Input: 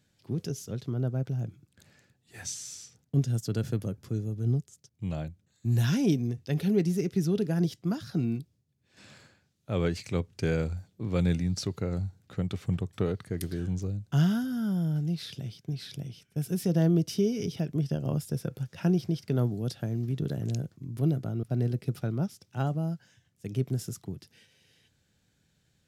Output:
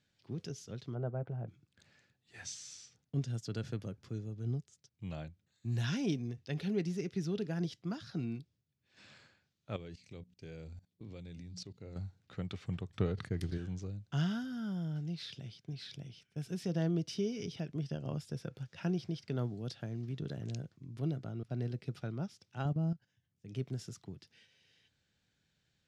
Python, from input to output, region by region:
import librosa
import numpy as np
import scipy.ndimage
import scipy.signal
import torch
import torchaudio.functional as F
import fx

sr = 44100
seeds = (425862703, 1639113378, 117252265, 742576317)

y = fx.chain(x, sr, fx.lowpass(hz=1600.0, slope=12),
    fx.peak_eq(hz=710.0, db=7.5, octaves=1.8),
    fx.notch(hz=270.0, q=5.8), at=(0.95, 1.48))
y = fx.chain(y, sr, fx.peak_eq(hz=1300.0, db=-9.5, octaves=1.5),
    fx.hum_notches(base_hz=60, count=4),
    fx.level_steps(step_db=19), at=(9.76, 11.96))
y = fx.chain(y, sr, fx.transient(attack_db=1, sustain_db=-8),
    fx.low_shelf(hz=210.0, db=9.0),
    fx.sustainer(db_per_s=130.0), at=(12.89, 13.58))
y = fx.chain(y, sr, fx.low_shelf(hz=400.0, db=11.5),
    fx.level_steps(step_db=11),
    fx.upward_expand(threshold_db=-37.0, expansion=1.5), at=(22.65, 23.48))
y = scipy.signal.sosfilt(scipy.signal.butter(2, 5100.0, 'lowpass', fs=sr, output='sos'), y)
y = fx.tilt_shelf(y, sr, db=-3.5, hz=970.0)
y = y * 10.0 ** (-6.0 / 20.0)